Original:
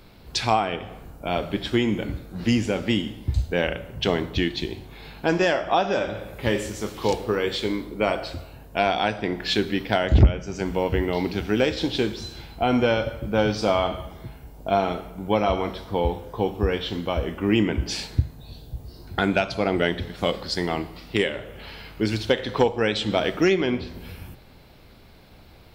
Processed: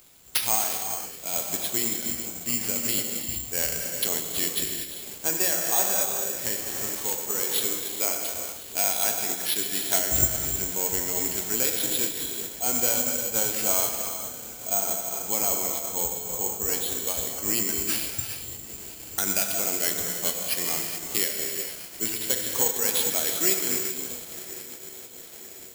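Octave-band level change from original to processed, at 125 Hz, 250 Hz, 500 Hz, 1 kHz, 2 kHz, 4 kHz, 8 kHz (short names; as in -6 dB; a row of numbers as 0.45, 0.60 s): -15.0, -12.5, -10.5, -9.0, -6.0, -1.5, +19.5 dB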